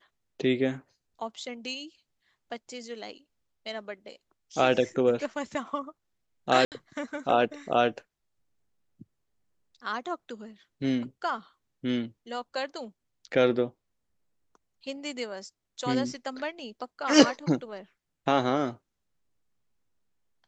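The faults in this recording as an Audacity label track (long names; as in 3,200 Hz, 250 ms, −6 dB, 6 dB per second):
6.650000	6.720000	drop-out 68 ms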